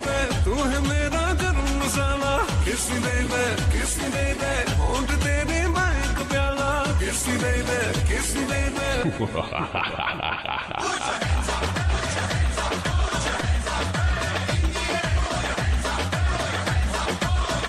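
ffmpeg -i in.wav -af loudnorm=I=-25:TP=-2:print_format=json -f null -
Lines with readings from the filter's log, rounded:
"input_i" : "-24.0",
"input_tp" : "-11.6",
"input_lra" : "1.8",
"input_thresh" : "-34.0",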